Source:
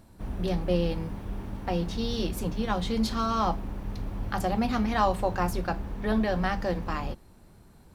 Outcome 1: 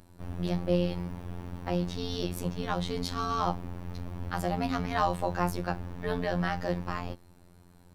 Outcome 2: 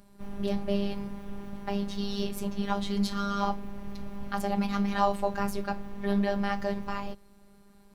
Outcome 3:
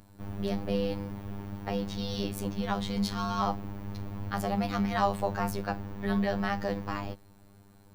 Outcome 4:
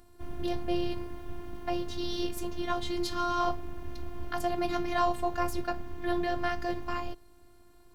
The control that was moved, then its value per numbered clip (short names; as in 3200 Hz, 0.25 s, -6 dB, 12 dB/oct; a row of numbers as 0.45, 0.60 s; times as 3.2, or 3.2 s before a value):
robotiser, frequency: 88, 200, 100, 350 Hz